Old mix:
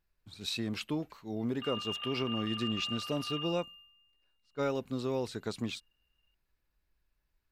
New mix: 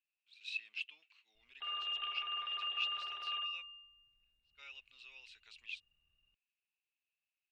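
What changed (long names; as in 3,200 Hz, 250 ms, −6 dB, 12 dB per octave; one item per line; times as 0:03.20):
speech: add four-pole ladder band-pass 2,800 Hz, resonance 80%
master: add low-shelf EQ 70 Hz +10.5 dB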